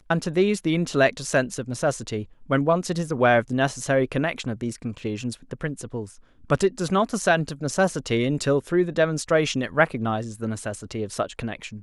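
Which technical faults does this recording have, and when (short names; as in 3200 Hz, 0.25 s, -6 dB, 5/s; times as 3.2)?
4.99 gap 2.3 ms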